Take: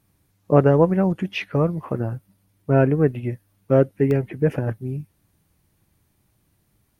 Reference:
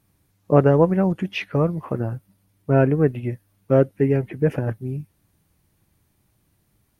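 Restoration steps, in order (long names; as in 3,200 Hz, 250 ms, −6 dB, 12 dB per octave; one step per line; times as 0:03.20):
repair the gap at 0:02.60/0:03.54/0:04.11, 1 ms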